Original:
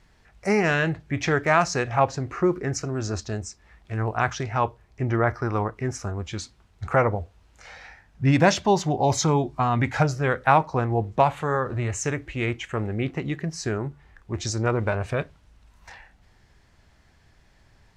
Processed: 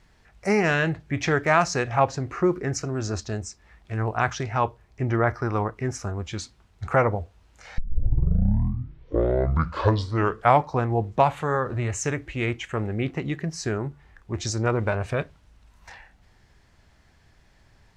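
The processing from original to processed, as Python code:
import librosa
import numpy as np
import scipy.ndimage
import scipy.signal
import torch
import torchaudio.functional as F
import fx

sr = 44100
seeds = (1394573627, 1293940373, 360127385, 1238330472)

y = fx.edit(x, sr, fx.tape_start(start_s=7.78, length_s=3.01), tone=tone)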